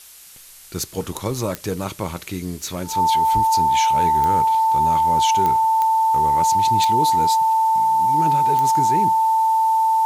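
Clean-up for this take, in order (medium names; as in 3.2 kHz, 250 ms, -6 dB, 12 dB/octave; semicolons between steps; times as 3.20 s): de-click; band-stop 890 Hz, Q 30; noise print and reduce 27 dB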